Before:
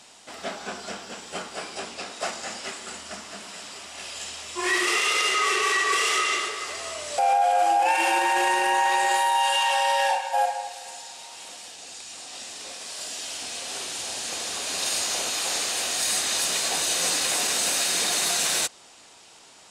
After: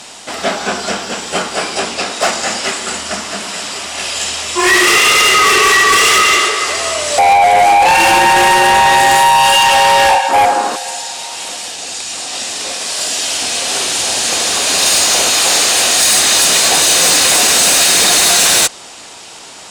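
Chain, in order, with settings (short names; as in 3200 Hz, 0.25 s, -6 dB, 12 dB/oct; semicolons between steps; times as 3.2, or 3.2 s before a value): 10.28–10.75 band noise 220–1400 Hz -38 dBFS; added harmonics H 5 -8 dB, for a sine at -10.5 dBFS; gain +7.5 dB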